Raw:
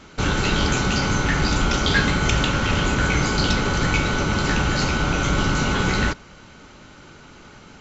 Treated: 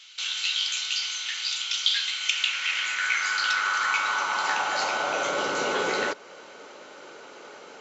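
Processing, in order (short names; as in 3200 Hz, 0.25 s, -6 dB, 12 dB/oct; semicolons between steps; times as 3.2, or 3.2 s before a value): in parallel at +1.5 dB: compressor, threshold -28 dBFS, peak gain reduction 13.5 dB; on the sum: high-pass sweep 3200 Hz -> 480 Hz, 2.04–5.58; gain -7 dB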